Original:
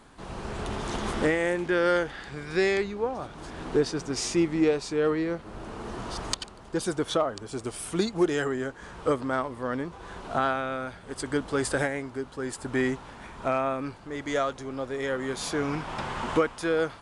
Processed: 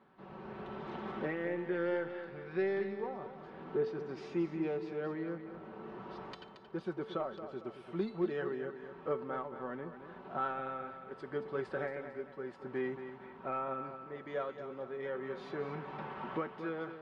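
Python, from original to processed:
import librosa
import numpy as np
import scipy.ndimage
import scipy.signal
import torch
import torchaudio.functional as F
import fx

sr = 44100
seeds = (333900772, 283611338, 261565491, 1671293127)

p1 = scipy.signal.sosfilt(scipy.signal.butter(2, 140.0, 'highpass', fs=sr, output='sos'), x)
p2 = fx.high_shelf(p1, sr, hz=5000.0, db=-8.0)
p3 = p2 + 0.54 * np.pad(p2, (int(5.3 * sr / 1000.0), 0))[:len(p2)]
p4 = 10.0 ** (-18.5 / 20.0) * np.tanh(p3 / 10.0 ** (-18.5 / 20.0))
p5 = p3 + (p4 * librosa.db_to_amplitude(-5.5))
p6 = fx.air_absorb(p5, sr, metres=340.0)
p7 = fx.comb_fb(p6, sr, f0_hz=440.0, decay_s=0.54, harmonics='all', damping=0.0, mix_pct=70)
p8 = p7 + fx.echo_feedback(p7, sr, ms=226, feedback_pct=41, wet_db=-10.0, dry=0)
y = p8 * librosa.db_to_amplitude(-3.5)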